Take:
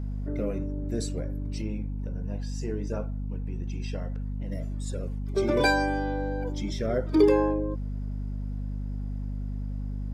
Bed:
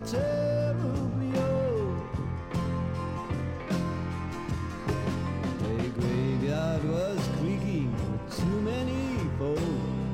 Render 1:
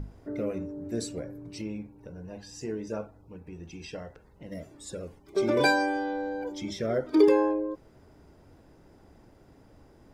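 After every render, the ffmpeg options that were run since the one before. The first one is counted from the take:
-af "bandreject=f=50:t=h:w=6,bandreject=f=100:t=h:w=6,bandreject=f=150:t=h:w=6,bandreject=f=200:t=h:w=6,bandreject=f=250:t=h:w=6"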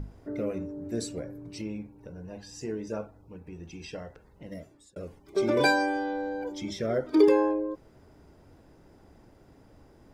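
-filter_complex "[0:a]asplit=2[s0][s1];[s0]atrim=end=4.96,asetpts=PTS-STARTPTS,afade=t=out:st=4.47:d=0.49[s2];[s1]atrim=start=4.96,asetpts=PTS-STARTPTS,afade=t=in:d=0.004:c=hsin[s3];[s2][s3]concat=n=2:v=0:a=1"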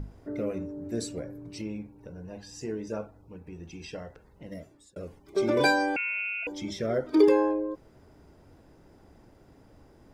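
-filter_complex "[0:a]asettb=1/sr,asplit=3[s0][s1][s2];[s0]atrim=end=5.964[s3];[s1]atrim=start=5.96:end=6.47,asetpts=PTS-STARTPTS,afade=t=in:d=0.004:c=qsin,afade=t=out:st=0.506:d=0.004:c=qsin,lowpass=f=2600:t=q:w=0.5098,lowpass=f=2600:t=q:w=0.6013,lowpass=f=2600:t=q:w=0.9,lowpass=f=2600:t=q:w=2.563,afreqshift=-3000[s4];[s2]atrim=start=6.466[s5];[s3][s4]acrossfade=d=0.004:c1=hsin:c2=qsin[s6];[s6][s5]acrossfade=d=0.004:c1=qsin:c2=hsin"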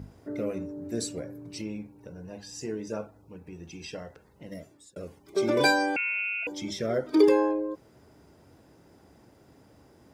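-af "highpass=82,highshelf=f=3900:g=5.5"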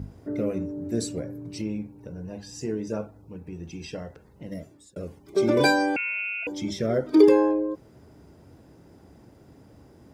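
-af "lowshelf=f=410:g=7.5"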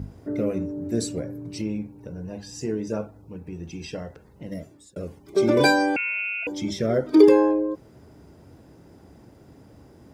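-af "volume=1.26"

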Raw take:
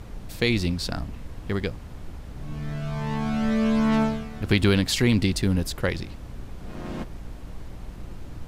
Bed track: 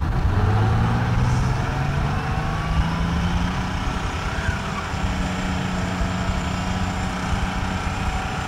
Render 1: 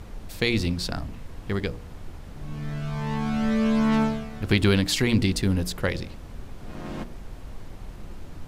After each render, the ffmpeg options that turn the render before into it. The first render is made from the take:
-af "bandreject=f=60:t=h:w=4,bandreject=f=120:t=h:w=4,bandreject=f=180:t=h:w=4,bandreject=f=240:t=h:w=4,bandreject=f=300:t=h:w=4,bandreject=f=360:t=h:w=4,bandreject=f=420:t=h:w=4,bandreject=f=480:t=h:w=4,bandreject=f=540:t=h:w=4,bandreject=f=600:t=h:w=4,bandreject=f=660:t=h:w=4"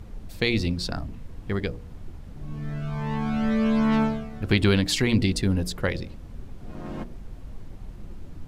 -af "afftdn=nr=7:nf=-41"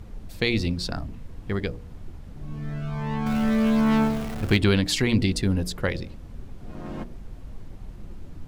-filter_complex "[0:a]asettb=1/sr,asplit=3[s0][s1][s2];[s0]atrim=end=3.264[s3];[s1]atrim=start=3.26:end=4.57,asetpts=PTS-STARTPTS,afade=t=in:d=0.004:c=qsin,afade=t=out:st=1.306:d=0.004:c=qsin,aeval=exprs='val(0)+0.5*0.0299*sgn(val(0))':c=same[s4];[s2]atrim=start=4.566[s5];[s3][s4]acrossfade=d=0.004:c1=hsin:c2=qsin[s6];[s6][s5]acrossfade=d=0.004:c1=qsin:c2=hsin"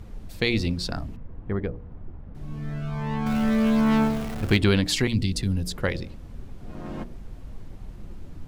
-filter_complex "[0:a]asettb=1/sr,asplit=3[s0][s1][s2];[s0]atrim=end=1.164[s3];[s1]atrim=start=1.16:end=2.35,asetpts=PTS-STARTPTS,afade=t=in:d=0.004:c=qsin,afade=t=out:st=1.186:d=0.004:c=qsin,lowpass=1400[s4];[s2]atrim=start=2.346[s5];[s3][s4]acrossfade=d=0.004:c1=hsin:c2=qsin[s6];[s6][s5]acrossfade=d=0.004:c1=qsin:c2=hsin,asettb=1/sr,asplit=3[s7][s8][s9];[s7]atrim=end=5.074[s10];[s8]atrim=start=5.07:end=5.77,asetpts=PTS-STARTPTS,afade=t=in:d=0.004:c=qsin,afade=t=out:st=0.696:d=0.004:c=qsin,acrossover=split=220|3000[s11][s12][s13];[s12]acompressor=threshold=0.0112:ratio=4:attack=3.2:release=140:knee=2.83:detection=peak[s14];[s11][s14][s13]amix=inputs=3:normalize=0[s15];[s9]atrim=start=5.766[s16];[s10][s15]acrossfade=d=0.004:c1=hsin:c2=qsin[s17];[s17][s16]acrossfade=d=0.004:c1=qsin:c2=hsin"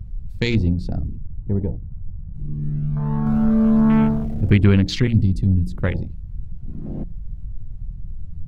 -af "afwtdn=0.0316,bass=f=250:g=9,treble=f=4000:g=0"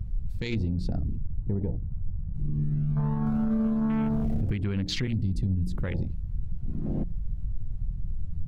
-af "acompressor=threshold=0.1:ratio=6,alimiter=limit=0.106:level=0:latency=1:release=46"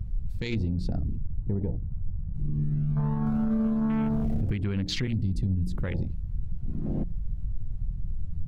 -af anull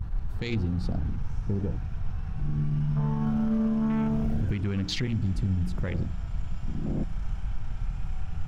-filter_complex "[1:a]volume=0.0562[s0];[0:a][s0]amix=inputs=2:normalize=0"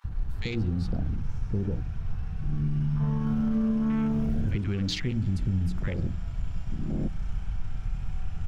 -filter_complex "[0:a]acrossover=split=900[s0][s1];[s0]adelay=40[s2];[s2][s1]amix=inputs=2:normalize=0"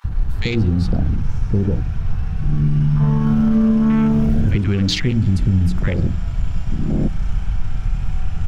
-af "volume=3.55"

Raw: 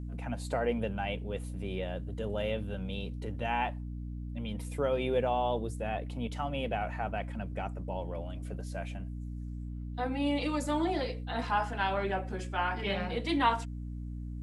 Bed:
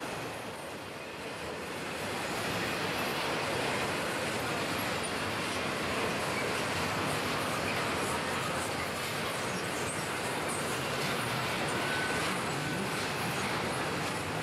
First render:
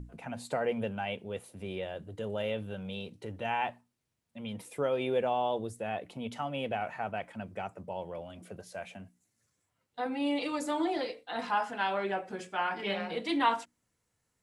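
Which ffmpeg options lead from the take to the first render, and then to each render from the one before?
-af "bandreject=f=60:t=h:w=6,bandreject=f=120:t=h:w=6,bandreject=f=180:t=h:w=6,bandreject=f=240:t=h:w=6,bandreject=f=300:t=h:w=6"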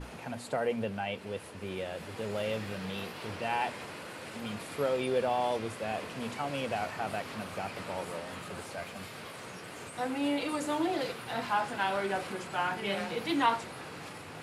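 -filter_complex "[1:a]volume=0.299[s0];[0:a][s0]amix=inputs=2:normalize=0"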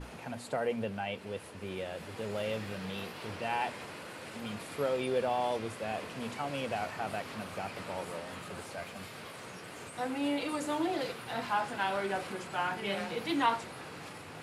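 -af "volume=0.841"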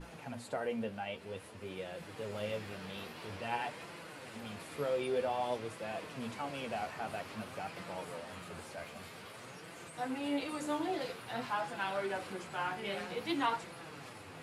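-af "flanger=delay=5.8:depth=7.8:regen=38:speed=0.51:shape=sinusoidal,asoftclip=type=hard:threshold=0.0841"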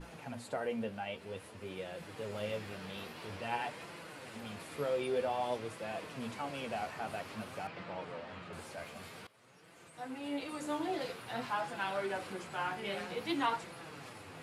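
-filter_complex "[0:a]asettb=1/sr,asplit=3[s0][s1][s2];[s0]atrim=end=7.674[s3];[s1]atrim=start=7.67:end=8.53,asetpts=PTS-STARTPTS,afade=t=in:d=0.004:c=qsin,afade=t=out:st=0.856:d=0.004:c=qsin,lowpass=3700[s4];[s2]atrim=start=8.526[s5];[s3][s4]acrossfade=d=0.004:c1=hsin:c2=qsin[s6];[s6][s5]acrossfade=d=0.004:c1=qsin:c2=hsin,asplit=2[s7][s8];[s7]atrim=end=9.27,asetpts=PTS-STARTPTS,afade=t=out:st=9.266:d=0.004:c=hsin:silence=0.112202[s9];[s8]atrim=start=9.27,asetpts=PTS-STARTPTS,afade=t=in:d=1.71:silence=0.112202[s10];[s9][s10]concat=n=2:v=0:a=1"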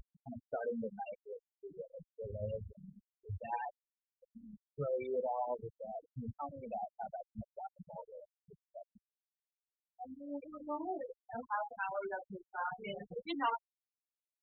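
-af "afftfilt=real='re*gte(hypot(re,im),0.0398)':imag='im*gte(hypot(re,im),0.0398)':win_size=1024:overlap=0.75,asubboost=boost=10:cutoff=86"

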